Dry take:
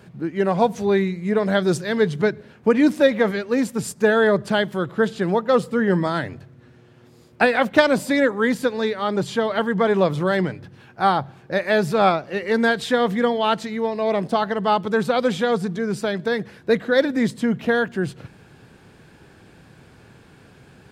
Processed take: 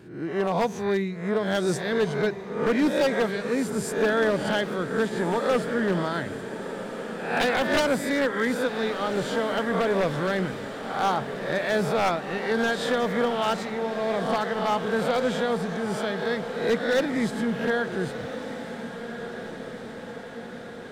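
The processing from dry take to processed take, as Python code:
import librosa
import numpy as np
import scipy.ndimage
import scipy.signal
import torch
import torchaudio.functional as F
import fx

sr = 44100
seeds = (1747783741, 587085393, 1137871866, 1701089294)

y = fx.spec_swells(x, sr, rise_s=0.6)
y = 10.0 ** (-9.5 / 20.0) * (np.abs((y / 10.0 ** (-9.5 / 20.0) + 3.0) % 4.0 - 2.0) - 1.0)
y = fx.echo_diffused(y, sr, ms=1443, feedback_pct=67, wet_db=-11.0)
y = F.gain(torch.from_numpy(y), -6.5).numpy()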